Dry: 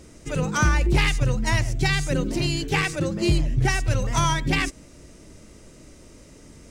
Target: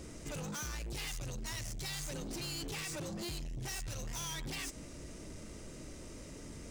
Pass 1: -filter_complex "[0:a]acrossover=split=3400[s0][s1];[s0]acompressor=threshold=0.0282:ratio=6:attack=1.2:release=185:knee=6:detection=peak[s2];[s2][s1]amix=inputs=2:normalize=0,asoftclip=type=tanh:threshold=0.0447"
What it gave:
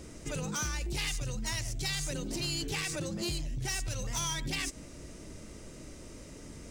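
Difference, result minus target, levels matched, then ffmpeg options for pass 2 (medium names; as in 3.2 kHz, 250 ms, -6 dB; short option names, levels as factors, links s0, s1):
saturation: distortion -9 dB
-filter_complex "[0:a]acrossover=split=3400[s0][s1];[s0]acompressor=threshold=0.0282:ratio=6:attack=1.2:release=185:knee=6:detection=peak[s2];[s2][s1]amix=inputs=2:normalize=0,asoftclip=type=tanh:threshold=0.0119"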